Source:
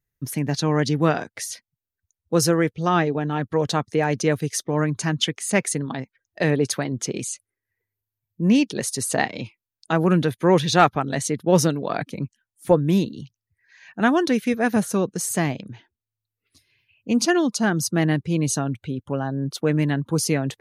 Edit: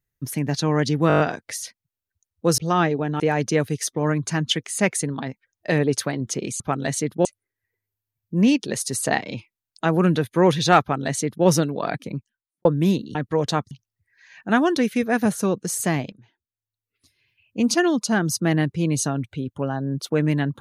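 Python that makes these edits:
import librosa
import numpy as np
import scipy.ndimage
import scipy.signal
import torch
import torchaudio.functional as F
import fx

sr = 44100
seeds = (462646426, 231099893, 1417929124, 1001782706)

y = fx.studio_fade_out(x, sr, start_s=12.04, length_s=0.68)
y = fx.edit(y, sr, fx.stutter(start_s=1.08, slice_s=0.02, count=7),
    fx.cut(start_s=2.46, length_s=0.28),
    fx.move(start_s=3.36, length_s=0.56, to_s=13.22),
    fx.duplicate(start_s=10.88, length_s=0.65, to_s=7.32),
    fx.fade_in_from(start_s=15.63, length_s=1.48, floor_db=-15.5), tone=tone)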